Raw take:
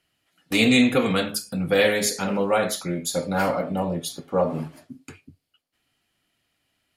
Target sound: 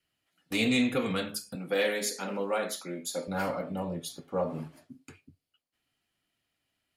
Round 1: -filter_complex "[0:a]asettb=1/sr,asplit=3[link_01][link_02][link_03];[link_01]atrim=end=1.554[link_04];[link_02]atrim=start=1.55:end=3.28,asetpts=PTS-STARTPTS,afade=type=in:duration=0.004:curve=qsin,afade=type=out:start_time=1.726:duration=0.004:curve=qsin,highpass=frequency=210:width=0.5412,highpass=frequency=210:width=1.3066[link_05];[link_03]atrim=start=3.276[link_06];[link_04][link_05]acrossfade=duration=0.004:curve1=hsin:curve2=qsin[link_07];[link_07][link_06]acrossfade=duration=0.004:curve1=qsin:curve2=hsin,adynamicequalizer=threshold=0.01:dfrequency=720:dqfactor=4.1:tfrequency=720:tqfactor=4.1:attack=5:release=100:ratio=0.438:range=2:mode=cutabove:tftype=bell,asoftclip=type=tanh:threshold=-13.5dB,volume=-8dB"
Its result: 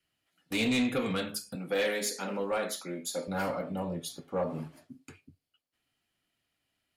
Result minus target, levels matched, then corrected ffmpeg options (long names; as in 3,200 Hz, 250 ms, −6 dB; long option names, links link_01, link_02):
soft clipping: distortion +12 dB
-filter_complex "[0:a]asettb=1/sr,asplit=3[link_01][link_02][link_03];[link_01]atrim=end=1.554[link_04];[link_02]atrim=start=1.55:end=3.28,asetpts=PTS-STARTPTS,afade=type=in:duration=0.004:curve=qsin,afade=type=out:start_time=1.726:duration=0.004:curve=qsin,highpass=frequency=210:width=0.5412,highpass=frequency=210:width=1.3066[link_05];[link_03]atrim=start=3.276[link_06];[link_04][link_05]acrossfade=duration=0.004:curve1=hsin:curve2=qsin[link_07];[link_07][link_06]acrossfade=duration=0.004:curve1=qsin:curve2=hsin,adynamicequalizer=threshold=0.01:dfrequency=720:dqfactor=4.1:tfrequency=720:tqfactor=4.1:attack=5:release=100:ratio=0.438:range=2:mode=cutabove:tftype=bell,asoftclip=type=tanh:threshold=-5.5dB,volume=-8dB"